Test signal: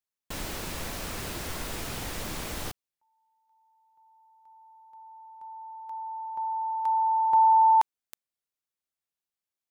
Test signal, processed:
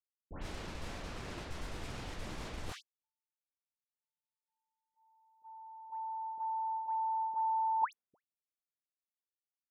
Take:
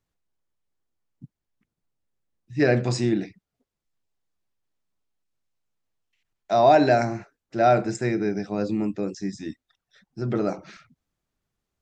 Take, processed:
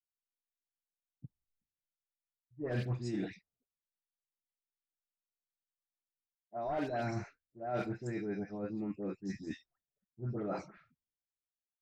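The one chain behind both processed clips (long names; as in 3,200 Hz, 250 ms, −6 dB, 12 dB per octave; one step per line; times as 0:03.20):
wavefolder on the positive side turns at −12 dBFS
all-pass dispersion highs, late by 117 ms, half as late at 1,700 Hz
reversed playback
downward compressor 6 to 1, threshold −34 dBFS
reversed playback
high-shelf EQ 3,300 Hz −9 dB
low-pass that shuts in the quiet parts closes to 380 Hz, open at −33.5 dBFS
multiband upward and downward expander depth 100%
level −2 dB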